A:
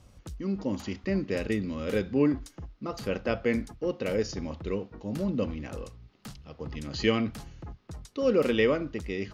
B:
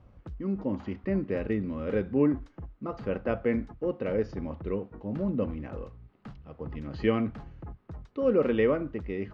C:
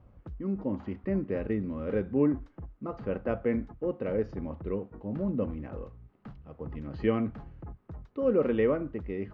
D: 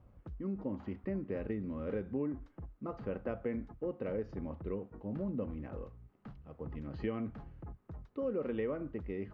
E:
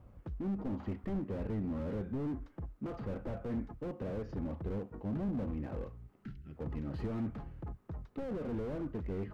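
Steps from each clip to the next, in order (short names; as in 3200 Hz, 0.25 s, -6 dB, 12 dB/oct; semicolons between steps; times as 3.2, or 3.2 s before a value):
LPF 1700 Hz 12 dB/oct
high shelf 3000 Hz -10 dB; gain -1 dB
compressor 4:1, threshold -29 dBFS, peak gain reduction 8.5 dB; gain -4 dB
spectral gain 6.24–6.56, 420–1300 Hz -18 dB; slew limiter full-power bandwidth 3.6 Hz; gain +4 dB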